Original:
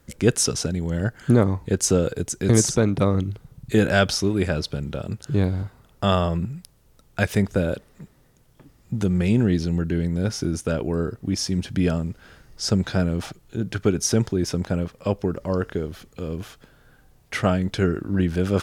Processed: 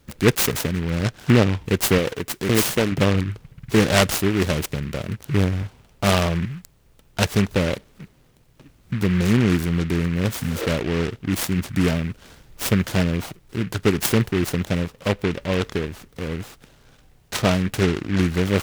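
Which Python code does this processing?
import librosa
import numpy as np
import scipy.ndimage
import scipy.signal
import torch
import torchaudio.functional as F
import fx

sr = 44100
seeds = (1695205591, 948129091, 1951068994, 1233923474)

y = fx.low_shelf(x, sr, hz=160.0, db=-10.0, at=(1.98, 2.92))
y = fx.spec_repair(y, sr, seeds[0], start_s=10.41, length_s=0.22, low_hz=270.0, high_hz=5000.0, source='both')
y = fx.noise_mod_delay(y, sr, seeds[1], noise_hz=1800.0, depth_ms=0.13)
y = y * librosa.db_to_amplitude(1.5)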